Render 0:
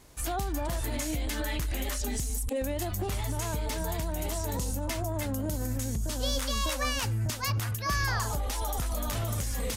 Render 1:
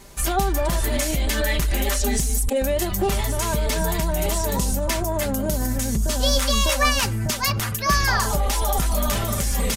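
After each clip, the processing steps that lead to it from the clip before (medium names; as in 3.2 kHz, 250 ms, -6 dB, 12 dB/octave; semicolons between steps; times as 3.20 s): comb 5.1 ms, depth 56%; trim +9 dB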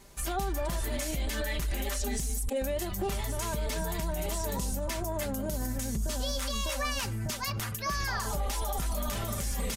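peak limiter -14 dBFS, peak gain reduction 6 dB; trim -9 dB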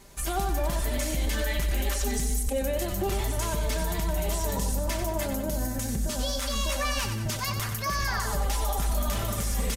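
feedback delay 93 ms, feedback 51%, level -8 dB; trim +2.5 dB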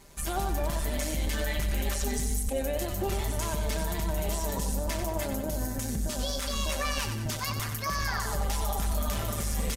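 AM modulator 150 Hz, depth 30%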